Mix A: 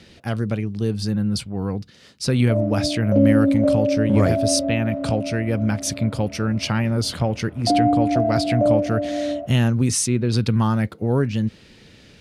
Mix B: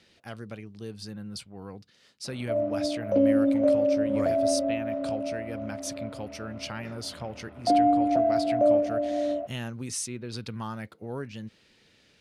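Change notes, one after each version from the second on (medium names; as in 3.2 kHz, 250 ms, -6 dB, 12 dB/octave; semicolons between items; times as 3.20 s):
speech -10.5 dB; master: add bass shelf 310 Hz -10 dB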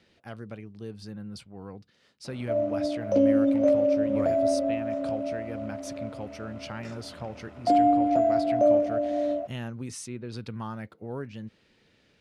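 speech: add treble shelf 2.9 kHz -9 dB; background: remove distance through air 210 m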